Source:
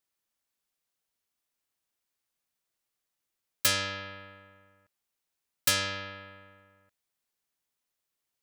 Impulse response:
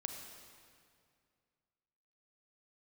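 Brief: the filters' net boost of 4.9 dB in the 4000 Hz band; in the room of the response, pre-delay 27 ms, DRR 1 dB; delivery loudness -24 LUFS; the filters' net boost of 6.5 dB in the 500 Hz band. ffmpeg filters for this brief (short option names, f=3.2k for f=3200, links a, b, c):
-filter_complex "[0:a]equalizer=f=500:t=o:g=7.5,equalizer=f=4k:t=o:g=6,asplit=2[a][b];[1:a]atrim=start_sample=2205,adelay=27[c];[b][c]afir=irnorm=-1:irlink=0,volume=0dB[d];[a][d]amix=inputs=2:normalize=0,volume=0.5dB"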